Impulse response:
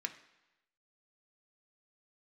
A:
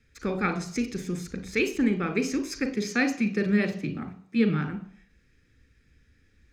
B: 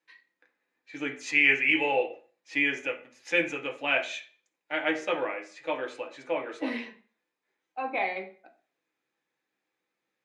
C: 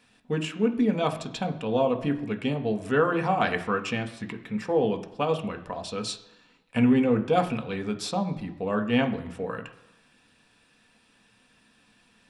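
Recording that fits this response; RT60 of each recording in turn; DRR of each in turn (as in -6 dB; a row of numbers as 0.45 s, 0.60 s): C; 0.55 s, 0.40 s, 1.0 s; 7.5 dB, 2.0 dB, 5.0 dB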